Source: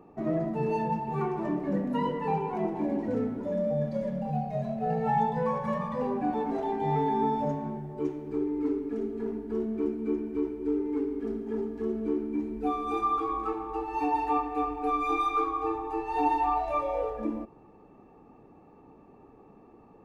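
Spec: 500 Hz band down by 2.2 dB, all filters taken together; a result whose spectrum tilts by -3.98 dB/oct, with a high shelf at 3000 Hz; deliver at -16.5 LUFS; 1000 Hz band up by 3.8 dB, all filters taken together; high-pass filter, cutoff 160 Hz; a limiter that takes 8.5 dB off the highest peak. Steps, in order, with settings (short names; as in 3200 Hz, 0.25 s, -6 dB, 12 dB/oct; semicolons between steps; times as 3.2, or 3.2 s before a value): HPF 160 Hz; bell 500 Hz -4 dB; bell 1000 Hz +6.5 dB; high shelf 3000 Hz -5.5 dB; gain +14 dB; limiter -6 dBFS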